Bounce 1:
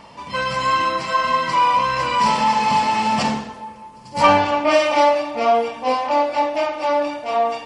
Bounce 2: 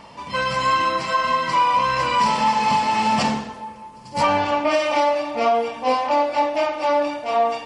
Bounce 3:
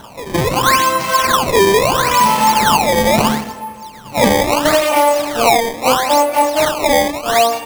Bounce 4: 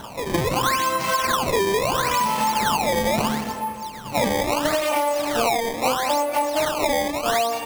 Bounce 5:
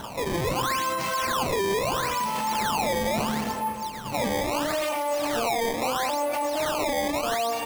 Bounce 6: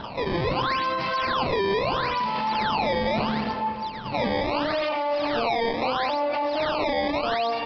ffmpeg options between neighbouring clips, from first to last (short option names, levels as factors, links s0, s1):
-af "alimiter=limit=0.335:level=0:latency=1:release=272"
-af "acrusher=samples=18:mix=1:aa=0.000001:lfo=1:lforange=28.8:lforate=0.75,volume=2.11"
-af "acompressor=threshold=0.112:ratio=6"
-af "alimiter=limit=0.0944:level=0:latency=1:release=18"
-af "aresample=11025,aresample=44100,volume=1.19"